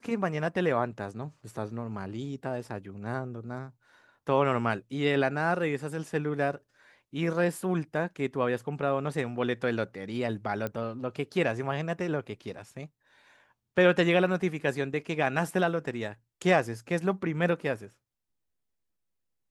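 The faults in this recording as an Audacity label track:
10.670000	10.670000	click −19 dBFS

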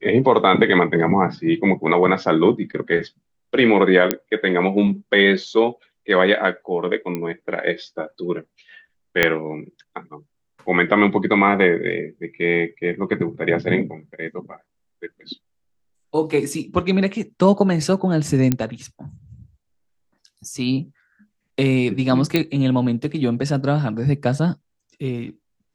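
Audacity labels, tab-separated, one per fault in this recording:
4.110000	4.110000	click −1 dBFS
7.150000	7.150000	click −13 dBFS
9.230000	9.230000	click −1 dBFS
18.520000	18.520000	click −5 dBFS
22.360000	22.360000	click −5 dBFS

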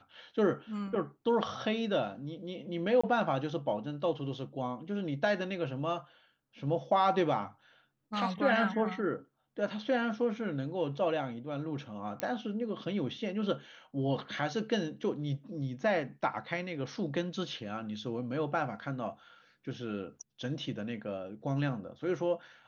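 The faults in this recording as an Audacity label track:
3.010000	3.040000	drop-out 25 ms
12.200000	12.200000	click −17 dBFS

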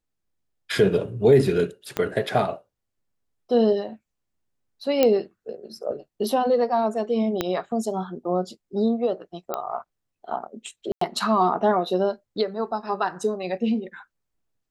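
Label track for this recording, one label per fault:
1.970000	1.970000	click −11 dBFS
5.030000	5.030000	click −6 dBFS
7.410000	7.410000	click −9 dBFS
9.540000	9.540000	click −13 dBFS
10.920000	11.010000	drop-out 94 ms

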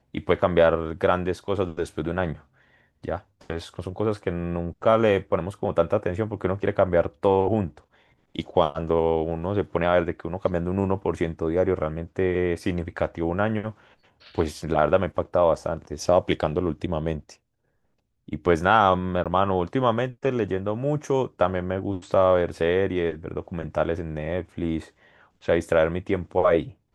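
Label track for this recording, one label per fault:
19.240000	19.260000	drop-out 17 ms

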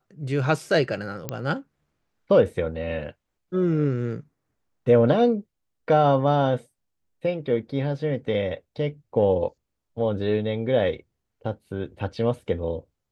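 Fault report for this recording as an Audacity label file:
1.290000	1.290000	click −13 dBFS

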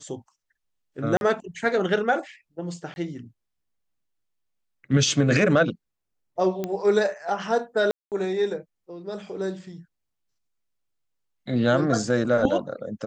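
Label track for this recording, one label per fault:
1.170000	1.210000	drop-out 41 ms
2.940000	2.960000	drop-out 21 ms
6.640000	6.640000	click −15 dBFS
7.910000	8.120000	drop-out 208 ms

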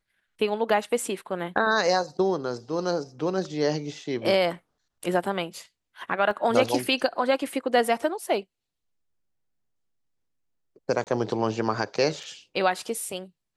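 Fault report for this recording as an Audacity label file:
6.310000	6.310000	drop-out 2.5 ms
11.040000	11.070000	drop-out 28 ms
12.230000	12.230000	drop-out 3.9 ms

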